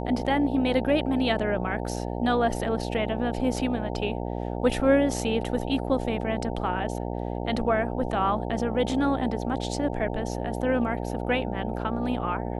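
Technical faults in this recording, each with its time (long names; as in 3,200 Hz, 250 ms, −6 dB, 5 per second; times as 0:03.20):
mains buzz 60 Hz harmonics 15 −31 dBFS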